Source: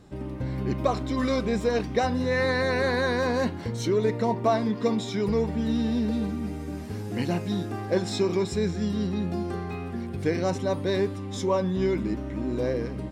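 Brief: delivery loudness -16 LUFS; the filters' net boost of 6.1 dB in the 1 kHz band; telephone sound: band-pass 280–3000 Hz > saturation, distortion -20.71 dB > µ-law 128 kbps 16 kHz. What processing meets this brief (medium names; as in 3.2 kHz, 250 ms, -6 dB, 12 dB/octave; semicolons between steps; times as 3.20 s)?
band-pass 280–3000 Hz; peaking EQ 1 kHz +8 dB; saturation -13 dBFS; trim +11.5 dB; µ-law 128 kbps 16 kHz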